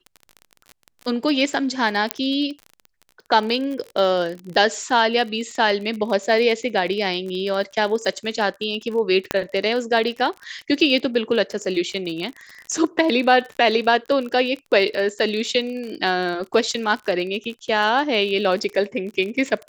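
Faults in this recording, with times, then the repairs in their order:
crackle 35/s -28 dBFS
2.11 pop -2 dBFS
9.31 pop -5 dBFS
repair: de-click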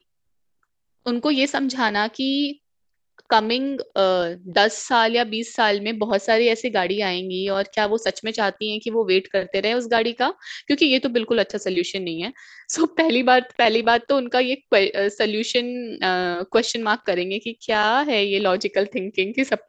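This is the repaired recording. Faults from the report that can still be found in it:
none

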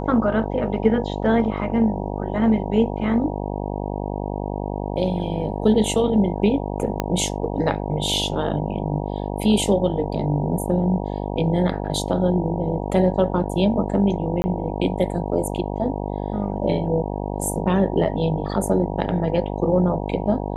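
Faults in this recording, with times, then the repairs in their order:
buzz 50 Hz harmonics 19 -27 dBFS
7 pop -8 dBFS
14.42–14.44 gap 20 ms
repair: de-click; de-hum 50 Hz, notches 19; interpolate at 14.42, 20 ms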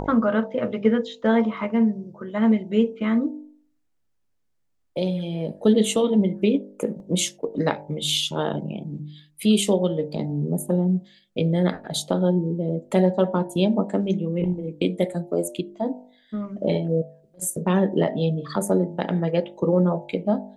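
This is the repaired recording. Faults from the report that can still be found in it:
7 pop

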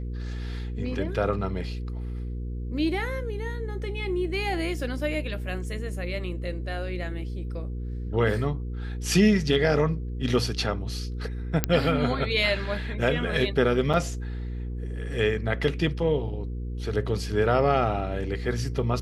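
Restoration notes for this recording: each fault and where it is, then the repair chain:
hum 60 Hz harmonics 8 -32 dBFS
11.64 pop -5 dBFS
13.93–13.94 gap 6.9 ms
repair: de-click; de-hum 60 Hz, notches 8; interpolate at 13.93, 6.9 ms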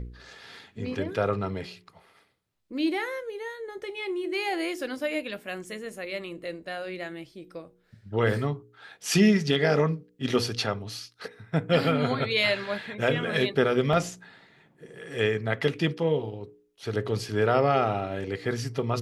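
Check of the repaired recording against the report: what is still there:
none

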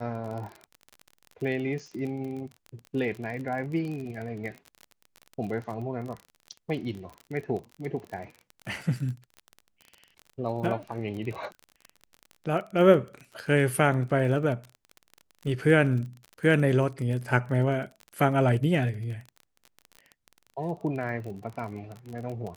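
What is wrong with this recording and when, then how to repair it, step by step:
crackle 30/s -34 dBFS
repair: de-click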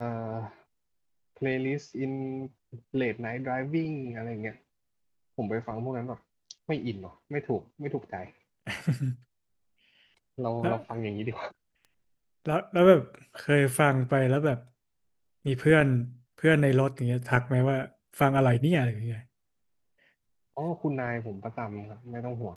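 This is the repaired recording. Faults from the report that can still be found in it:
none

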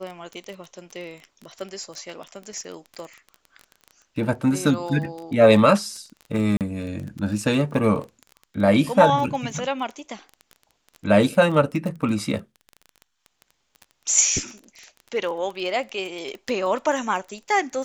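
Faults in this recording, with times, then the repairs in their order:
crackle 20/s -30 dBFS
6.57–6.61 gap 38 ms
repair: de-click; interpolate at 6.57, 38 ms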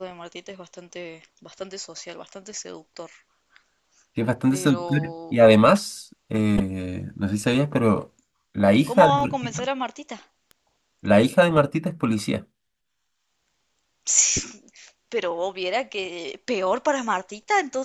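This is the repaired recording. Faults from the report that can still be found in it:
none

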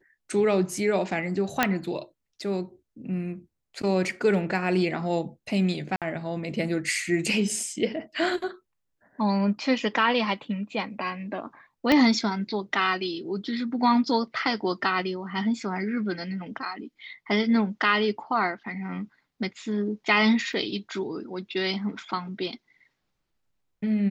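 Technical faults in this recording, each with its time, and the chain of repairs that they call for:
1.63 pop -5 dBFS
5.96–6.02 gap 57 ms
11.92 pop -9 dBFS
20.53 gap 2.1 ms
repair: de-click; interpolate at 5.96, 57 ms; interpolate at 20.53, 2.1 ms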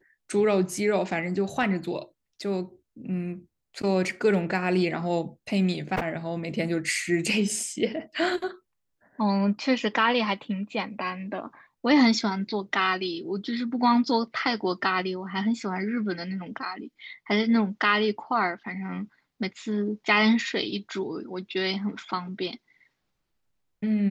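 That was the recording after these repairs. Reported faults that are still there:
11.92 pop

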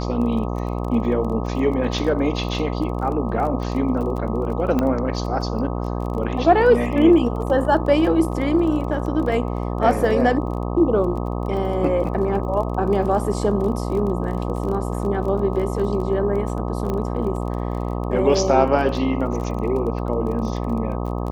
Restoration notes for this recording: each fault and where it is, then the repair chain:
buzz 60 Hz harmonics 21 -25 dBFS
crackle 23/s -29 dBFS
4.79 pop -10 dBFS
16.9 pop -14 dBFS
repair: de-click; de-hum 60 Hz, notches 21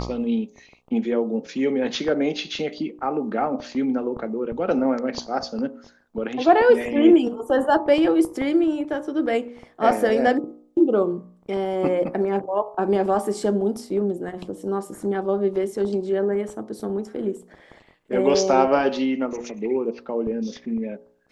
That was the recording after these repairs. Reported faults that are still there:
none

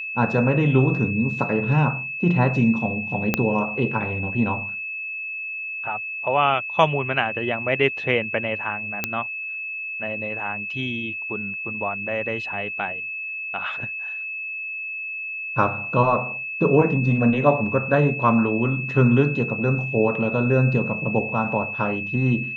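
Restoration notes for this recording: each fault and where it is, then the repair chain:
tone 2600 Hz -28 dBFS
3.34 pop -5 dBFS
9.04 pop -7 dBFS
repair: de-click; notch 2600 Hz, Q 30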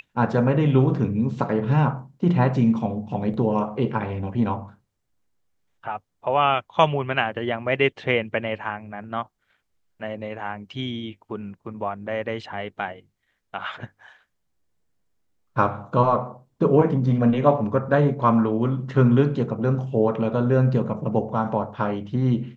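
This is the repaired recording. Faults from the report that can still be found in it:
3.34 pop

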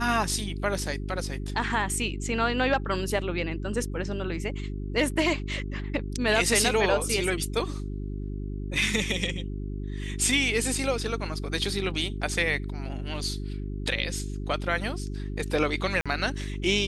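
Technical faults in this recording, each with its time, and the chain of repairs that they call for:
hum 50 Hz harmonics 8 -33 dBFS
16.01–16.06 gap 46 ms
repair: de-hum 50 Hz, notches 8; interpolate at 16.01, 46 ms

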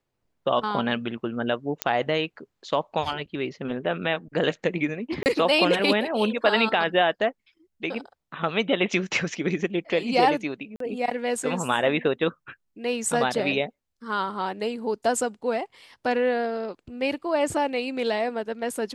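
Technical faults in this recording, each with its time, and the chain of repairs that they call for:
1.82 pop -6 dBFS
5.23–5.26 gap 29 ms
10.76–10.8 gap 43 ms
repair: de-click; interpolate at 5.23, 29 ms; interpolate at 10.76, 43 ms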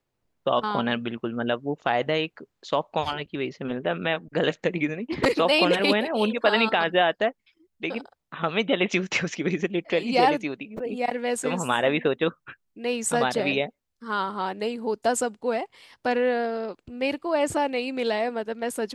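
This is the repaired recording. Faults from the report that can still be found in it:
none

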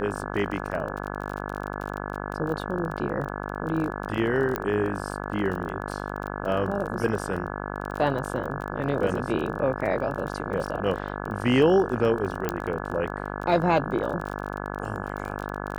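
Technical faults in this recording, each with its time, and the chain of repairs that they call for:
buzz 50 Hz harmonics 34 -33 dBFS
crackle 25/s -31 dBFS
4.56 pop -12 dBFS
12.49 pop -11 dBFS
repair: de-click; de-hum 50 Hz, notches 34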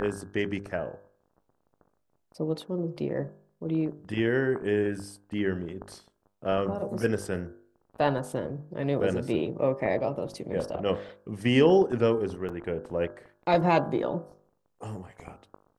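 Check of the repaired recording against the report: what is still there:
12.49 pop

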